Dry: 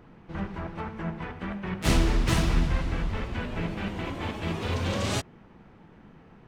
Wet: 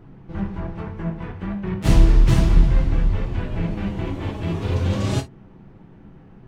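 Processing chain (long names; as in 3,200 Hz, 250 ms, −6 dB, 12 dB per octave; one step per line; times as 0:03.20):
low-shelf EQ 380 Hz +11.5 dB
reverb whose tail is shaped and stops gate 80 ms falling, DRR 4 dB
level −3 dB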